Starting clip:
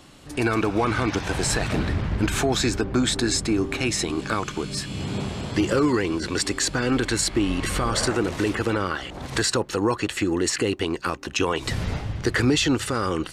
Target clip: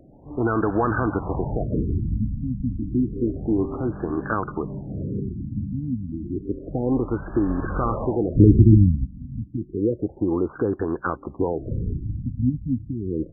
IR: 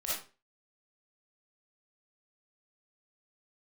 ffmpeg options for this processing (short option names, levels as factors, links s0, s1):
-filter_complex "[0:a]asplit=3[s0][s1][s2];[s0]afade=t=out:st=8.35:d=0.02[s3];[s1]asubboost=boost=11:cutoff=220,afade=t=in:st=8.35:d=0.02,afade=t=out:st=9.05:d=0.02[s4];[s2]afade=t=in:st=9.05:d=0.02[s5];[s3][s4][s5]amix=inputs=3:normalize=0,afftfilt=real='re*lt(b*sr/1024,260*pow(1800/260,0.5+0.5*sin(2*PI*0.3*pts/sr)))':imag='im*lt(b*sr/1024,260*pow(1800/260,0.5+0.5*sin(2*PI*0.3*pts/sr)))':win_size=1024:overlap=0.75,volume=1.12"